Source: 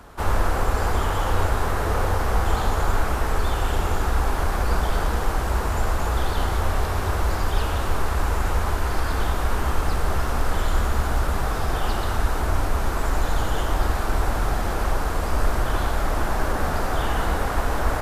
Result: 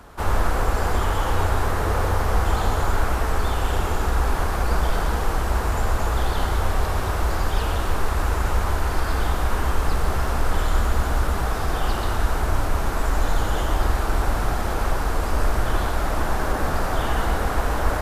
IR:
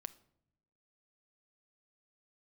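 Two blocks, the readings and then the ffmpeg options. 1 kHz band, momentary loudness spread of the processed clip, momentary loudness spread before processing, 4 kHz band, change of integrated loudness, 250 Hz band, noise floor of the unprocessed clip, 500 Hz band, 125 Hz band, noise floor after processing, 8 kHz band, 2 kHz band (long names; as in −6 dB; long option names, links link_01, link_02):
+0.5 dB, 2 LU, 2 LU, +0.5 dB, +0.5 dB, +0.5 dB, −25 dBFS, +0.5 dB, +0.5 dB, −25 dBFS, +0.5 dB, +0.5 dB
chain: -filter_complex "[0:a]asplit=2[link_01][link_02];[1:a]atrim=start_sample=2205,adelay=136[link_03];[link_02][link_03]afir=irnorm=-1:irlink=0,volume=-5dB[link_04];[link_01][link_04]amix=inputs=2:normalize=0"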